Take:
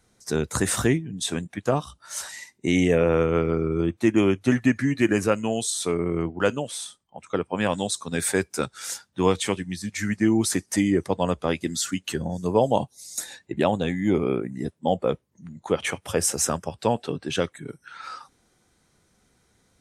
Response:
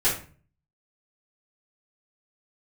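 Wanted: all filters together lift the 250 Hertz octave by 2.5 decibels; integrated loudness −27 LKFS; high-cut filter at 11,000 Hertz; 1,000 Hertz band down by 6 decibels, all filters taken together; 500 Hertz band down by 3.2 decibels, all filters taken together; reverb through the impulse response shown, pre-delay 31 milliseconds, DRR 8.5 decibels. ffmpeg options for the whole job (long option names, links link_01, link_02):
-filter_complex "[0:a]lowpass=11000,equalizer=frequency=250:width_type=o:gain=5,equalizer=frequency=500:width_type=o:gain=-4.5,equalizer=frequency=1000:width_type=o:gain=-7,asplit=2[link_01][link_02];[1:a]atrim=start_sample=2205,adelay=31[link_03];[link_02][link_03]afir=irnorm=-1:irlink=0,volume=-21.5dB[link_04];[link_01][link_04]amix=inputs=2:normalize=0,volume=-3dB"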